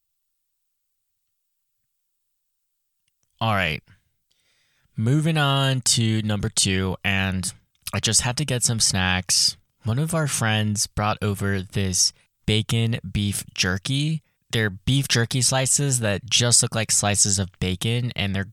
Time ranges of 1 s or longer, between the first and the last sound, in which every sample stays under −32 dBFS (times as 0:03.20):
0:03.79–0:04.98